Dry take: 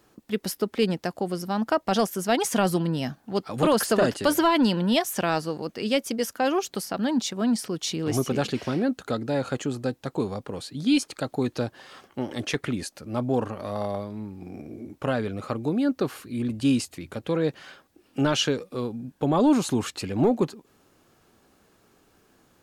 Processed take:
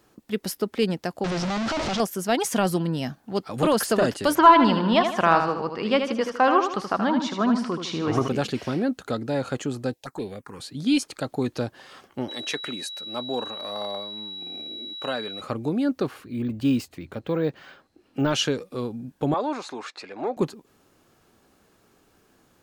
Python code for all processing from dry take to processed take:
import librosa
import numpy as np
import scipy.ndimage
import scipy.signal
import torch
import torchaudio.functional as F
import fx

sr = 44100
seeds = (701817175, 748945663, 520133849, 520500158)

y = fx.chain(x, sr, fx.clip_1bit(),
    fx.lowpass(hz=6000.0, slope=24), at=(1.24, 2.0))
y = fx.chain(y, sr, fx.lowpass(hz=3900.0, slope=12),
    fx.peak_eq(hz=1100.0, db=12.5, octaves=0.95),
    fx.echo_feedback(ms=78, feedback_pct=41, wet_db=-7.0), at=(4.35, 8.28))
y = fx.chain(y, sr, fx.low_shelf(hz=350.0, db=-11.5),
    fx.leveller(passes=1),
    fx.env_phaser(low_hz=200.0, high_hz=1200.0, full_db=-27.0), at=(9.93, 10.6))
y = fx.low_shelf(y, sr, hz=400.0, db=-8.0, at=(12.28, 15.4), fade=0.02)
y = fx.dmg_tone(y, sr, hz=3900.0, level_db=-34.0, at=(12.28, 15.4), fade=0.02)
y = fx.highpass(y, sr, hz=200.0, slope=12, at=(12.28, 15.4), fade=0.02)
y = fx.chain(y, sr, fx.resample_bad(factor=2, down='none', up='hold'),
    fx.high_shelf(hz=4800.0, db=-10.5), at=(16.07, 18.31))
y = fx.chain(y, sr, fx.bandpass_edges(low_hz=590.0, high_hz=3900.0),
    fx.peak_eq(hz=3000.0, db=-11.0, octaves=0.22), at=(19.34, 20.37))